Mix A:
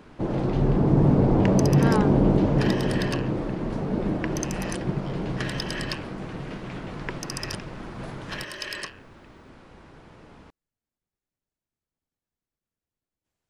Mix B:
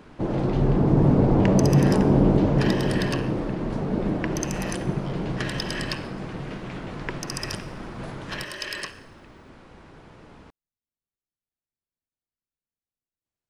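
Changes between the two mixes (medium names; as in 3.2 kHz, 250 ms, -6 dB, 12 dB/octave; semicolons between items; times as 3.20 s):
speech -9.0 dB; reverb: on, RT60 1.0 s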